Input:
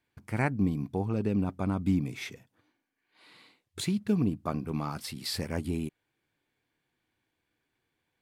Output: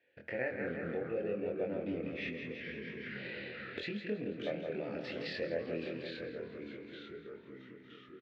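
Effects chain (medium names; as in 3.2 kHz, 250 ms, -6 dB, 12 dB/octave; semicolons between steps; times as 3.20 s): vowel filter e; feedback delay 166 ms, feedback 47%, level -8.5 dB; compression 2.5:1, threshold -60 dBFS, peak gain reduction 16 dB; ever faster or slower copies 156 ms, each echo -2 st, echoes 3, each echo -6 dB; low-pass 4.6 kHz 24 dB/octave; doubling 24 ms -3 dB; de-hum 79.05 Hz, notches 36; 2.28–3.83 s: three bands compressed up and down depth 100%; trim +17.5 dB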